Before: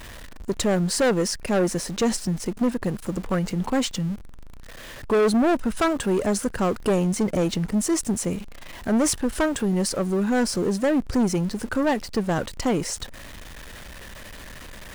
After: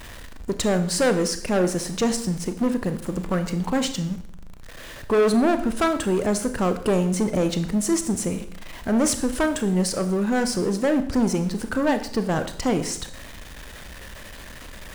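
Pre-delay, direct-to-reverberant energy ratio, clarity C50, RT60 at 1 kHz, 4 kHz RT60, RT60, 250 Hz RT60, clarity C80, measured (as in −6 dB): 27 ms, 9.0 dB, 12.0 dB, 0.60 s, 0.60 s, 0.65 s, 0.75 s, 14.0 dB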